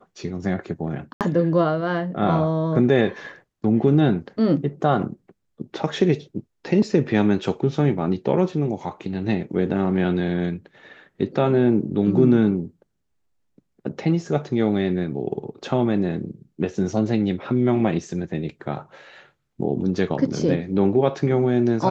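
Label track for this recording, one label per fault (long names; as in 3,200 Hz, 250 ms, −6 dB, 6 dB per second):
1.130000	1.210000	drop-out 78 ms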